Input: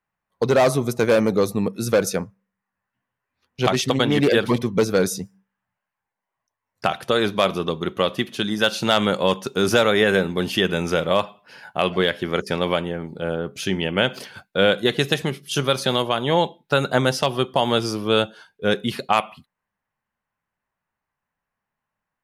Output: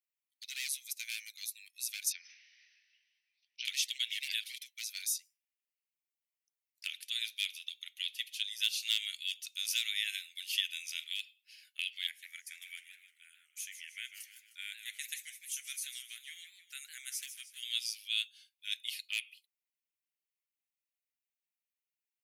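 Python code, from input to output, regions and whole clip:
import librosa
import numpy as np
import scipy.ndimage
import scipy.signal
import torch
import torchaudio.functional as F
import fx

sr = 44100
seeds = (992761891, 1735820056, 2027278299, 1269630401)

y = fx.chain(x, sr, fx.brickwall_bandpass(low_hz=700.0, high_hz=6200.0),
    fx.sustainer(db_per_s=33.0), at=(2.12, 3.65))
y = fx.chain(y, sr, fx.band_shelf(hz=3700.0, db=-13.5, octaves=1.2),
    fx.echo_warbled(ms=155, feedback_pct=46, rate_hz=2.8, cents=213, wet_db=-10.0), at=(12.07, 17.63))
y = scipy.signal.sosfilt(scipy.signal.butter(8, 2200.0, 'highpass', fs=sr, output='sos'), y)
y = fx.high_shelf(y, sr, hz=10000.0, db=10.5)
y = y * 10.0 ** (-8.5 / 20.0)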